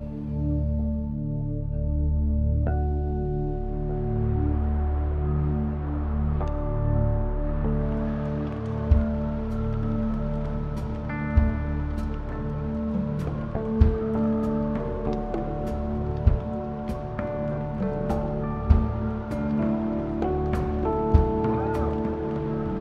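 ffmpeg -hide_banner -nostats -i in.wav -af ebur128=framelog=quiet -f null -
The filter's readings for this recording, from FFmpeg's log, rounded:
Integrated loudness:
  I:         -27.0 LUFS
  Threshold: -37.0 LUFS
Loudness range:
  LRA:         2.8 LU
  Threshold: -47.0 LUFS
  LRA low:   -28.4 LUFS
  LRA high:  -25.6 LUFS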